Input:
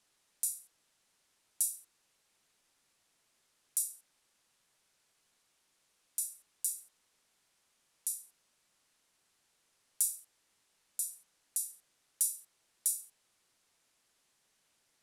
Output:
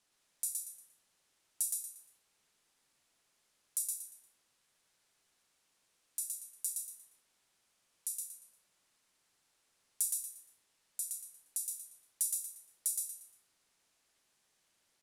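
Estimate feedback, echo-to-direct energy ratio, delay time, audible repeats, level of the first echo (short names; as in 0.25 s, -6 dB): 31%, -2.5 dB, 0.117 s, 4, -3.0 dB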